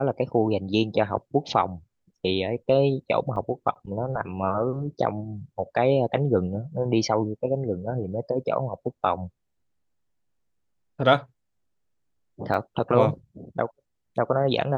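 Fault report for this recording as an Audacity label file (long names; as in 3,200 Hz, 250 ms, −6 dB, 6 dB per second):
3.360000	3.360000	drop-out 2.9 ms
12.540000	12.540000	drop-out 3.8 ms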